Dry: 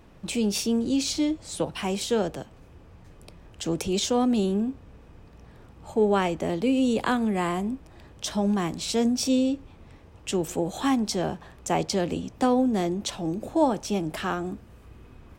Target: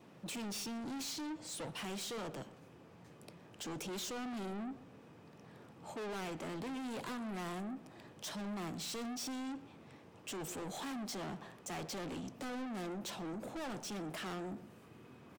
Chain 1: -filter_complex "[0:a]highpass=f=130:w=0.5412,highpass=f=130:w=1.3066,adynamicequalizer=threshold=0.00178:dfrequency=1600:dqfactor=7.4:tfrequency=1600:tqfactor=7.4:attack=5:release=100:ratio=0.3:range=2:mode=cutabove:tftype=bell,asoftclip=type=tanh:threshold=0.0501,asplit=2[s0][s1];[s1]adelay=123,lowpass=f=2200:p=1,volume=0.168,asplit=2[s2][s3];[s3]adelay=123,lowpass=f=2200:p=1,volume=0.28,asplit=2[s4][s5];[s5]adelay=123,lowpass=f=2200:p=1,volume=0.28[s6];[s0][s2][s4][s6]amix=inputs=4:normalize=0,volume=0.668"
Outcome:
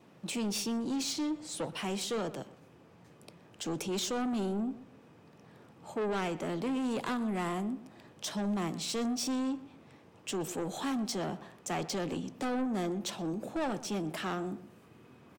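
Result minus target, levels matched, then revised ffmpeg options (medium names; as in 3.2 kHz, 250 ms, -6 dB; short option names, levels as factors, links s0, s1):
saturation: distortion -6 dB
-filter_complex "[0:a]highpass=f=130:w=0.5412,highpass=f=130:w=1.3066,adynamicequalizer=threshold=0.00178:dfrequency=1600:dqfactor=7.4:tfrequency=1600:tqfactor=7.4:attack=5:release=100:ratio=0.3:range=2:mode=cutabove:tftype=bell,asoftclip=type=tanh:threshold=0.0141,asplit=2[s0][s1];[s1]adelay=123,lowpass=f=2200:p=1,volume=0.168,asplit=2[s2][s3];[s3]adelay=123,lowpass=f=2200:p=1,volume=0.28,asplit=2[s4][s5];[s5]adelay=123,lowpass=f=2200:p=1,volume=0.28[s6];[s0][s2][s4][s6]amix=inputs=4:normalize=0,volume=0.668"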